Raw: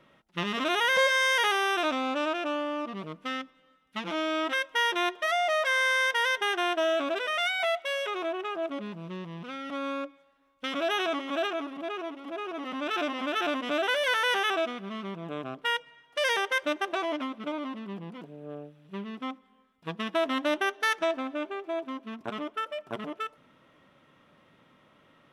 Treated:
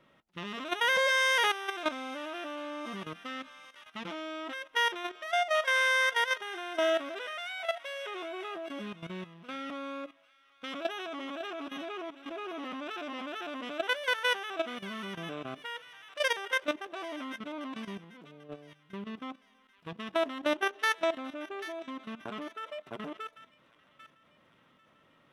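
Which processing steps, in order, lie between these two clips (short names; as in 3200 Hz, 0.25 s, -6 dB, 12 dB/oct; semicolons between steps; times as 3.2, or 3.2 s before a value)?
on a send: thin delay 0.793 s, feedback 42%, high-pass 1500 Hz, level -12 dB; on the sum: level quantiser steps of 13 dB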